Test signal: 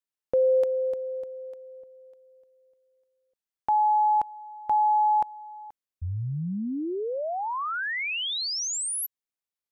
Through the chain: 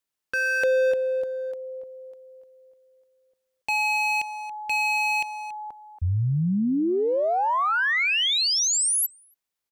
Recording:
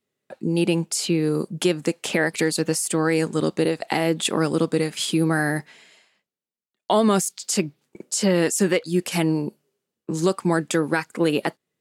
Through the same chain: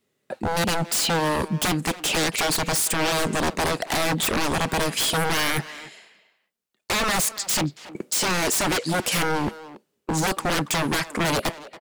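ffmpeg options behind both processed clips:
ffmpeg -i in.wav -filter_complex "[0:a]aeval=exprs='0.0596*(abs(mod(val(0)/0.0596+3,4)-2)-1)':channel_layout=same,asplit=2[link_01][link_02];[link_02]adelay=280,highpass=300,lowpass=3400,asoftclip=type=hard:threshold=-34.5dB,volume=-11dB[link_03];[link_01][link_03]amix=inputs=2:normalize=0,volume=7dB" out.wav

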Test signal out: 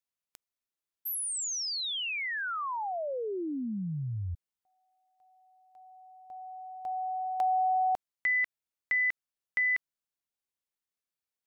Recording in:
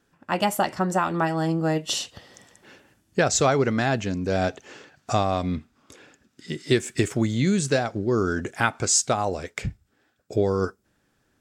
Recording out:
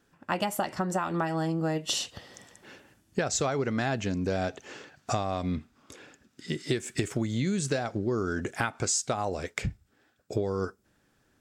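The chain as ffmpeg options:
ffmpeg -i in.wav -af "acompressor=threshold=-25dB:ratio=6" out.wav

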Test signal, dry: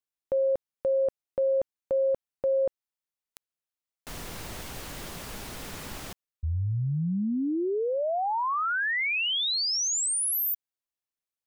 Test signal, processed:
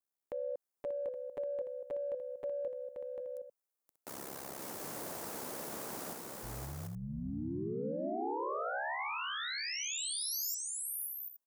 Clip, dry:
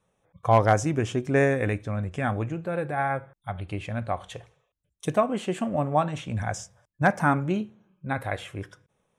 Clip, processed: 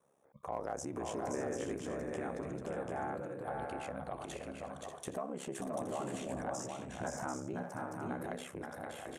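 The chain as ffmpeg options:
ffmpeg -i in.wav -filter_complex "[0:a]highpass=280,equalizer=frequency=3000:width_type=o:width=1.9:gain=-13,acompressor=threshold=-46dB:ratio=3:attack=3.3:release=36:detection=rms,aeval=exprs='val(0)*sin(2*PI*34*n/s)':channel_layout=same,asplit=2[link_01][link_02];[link_02]aecho=0:1:523|587|740|821:0.631|0.335|0.562|0.2[link_03];[link_01][link_03]amix=inputs=2:normalize=0,volume=6dB" out.wav

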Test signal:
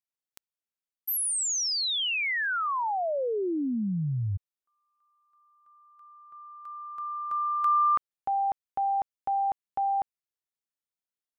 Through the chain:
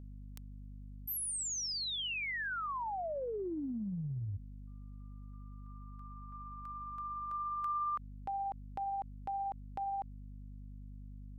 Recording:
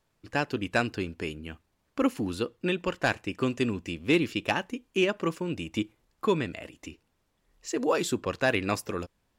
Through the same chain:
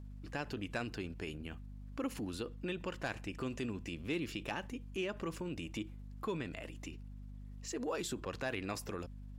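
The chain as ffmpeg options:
ffmpeg -i in.wav -af "tremolo=f=17:d=0.33,aeval=exprs='val(0)+0.00447*(sin(2*PI*50*n/s)+sin(2*PI*2*50*n/s)/2+sin(2*PI*3*50*n/s)/3+sin(2*PI*4*50*n/s)/4+sin(2*PI*5*50*n/s)/5)':channel_layout=same,acompressor=threshold=-45dB:ratio=2:attack=1.9:release=52:knee=6:detection=peak,volume=1dB" out.wav

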